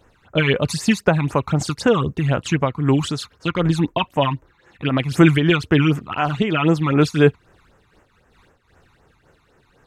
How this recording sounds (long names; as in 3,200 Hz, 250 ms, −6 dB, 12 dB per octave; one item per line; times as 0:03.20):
phaser sweep stages 12, 3.9 Hz, lowest notch 500–4,200 Hz
amplitude modulation by smooth noise